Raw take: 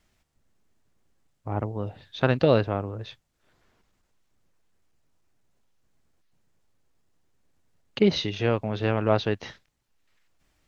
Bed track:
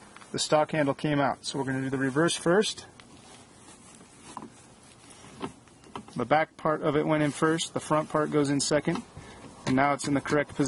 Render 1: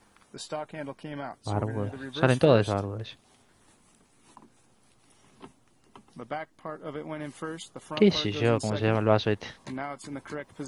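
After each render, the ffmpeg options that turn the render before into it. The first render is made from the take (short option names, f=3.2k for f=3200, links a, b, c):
-filter_complex "[1:a]volume=-11.5dB[a];[0:a][a]amix=inputs=2:normalize=0"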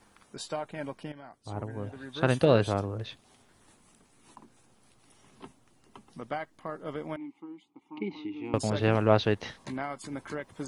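-filter_complex "[0:a]asettb=1/sr,asplit=3[a][b][c];[a]atrim=end=7.164[d];[b]atrim=start=7.16:end=8.54,asetpts=PTS-STARTPTS,afade=t=in:d=0.004:c=qsin,afade=t=out:st=1.376:d=0.004:c=qsin,asplit=3[e][f][g];[e]bandpass=f=300:t=q:w=8,volume=0dB[h];[f]bandpass=f=870:t=q:w=8,volume=-6dB[i];[g]bandpass=f=2.24k:t=q:w=8,volume=-9dB[j];[h][i][j]amix=inputs=3:normalize=0[k];[c]atrim=start=8.536[l];[d][k]acrossfade=d=0.004:c1=hsin:c2=qsin[m];[m][l]acrossfade=d=0.004:c1=qsin:c2=hsin,asplit=2[n][o];[n]atrim=end=1.12,asetpts=PTS-STARTPTS,afade=t=out:st=1.116:d=0.004:c=hsin:silence=0.223872[p];[o]atrim=start=1.12,asetpts=PTS-STARTPTS,afade=t=in:d=1.87:silence=0.223872[q];[p][q]concat=n=2:v=0:a=1"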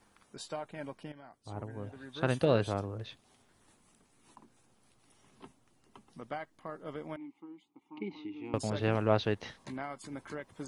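-af "volume=-5dB"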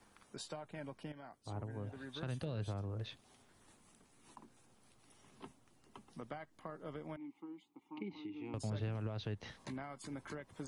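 -filter_complex "[0:a]acrossover=split=3200[a][b];[a]alimiter=limit=-22dB:level=0:latency=1:release=101[c];[c][b]amix=inputs=2:normalize=0,acrossover=split=170[d][e];[e]acompressor=threshold=-44dB:ratio=5[f];[d][f]amix=inputs=2:normalize=0"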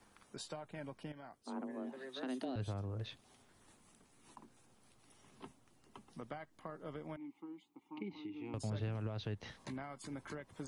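-filter_complex "[0:a]asettb=1/sr,asplit=3[a][b][c];[a]atrim=end=1.434[d];[b]atrim=start=1.43:end=2.56,asetpts=PTS-STARTPTS,afade=t=in:d=0.004:c=qsin,afade=t=out:st=1.126:d=0.004:c=qsin,afreqshift=130[e];[c]atrim=start=2.556[f];[d][e]acrossfade=d=0.004:c1=hsin:c2=qsin[g];[g][f]acrossfade=d=0.004:c1=qsin:c2=hsin"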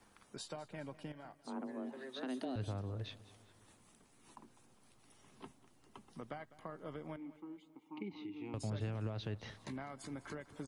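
-af "aecho=1:1:202|404|606|808:0.126|0.0655|0.034|0.0177"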